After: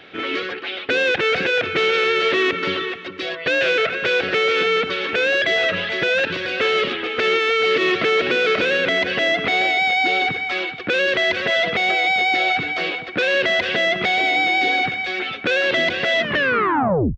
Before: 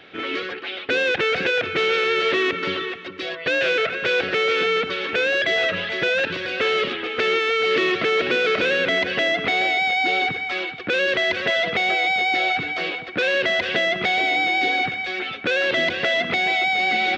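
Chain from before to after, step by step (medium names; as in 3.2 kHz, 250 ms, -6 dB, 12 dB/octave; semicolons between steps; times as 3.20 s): tape stop on the ending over 0.99 s; loudness maximiser +11 dB; trim -8.5 dB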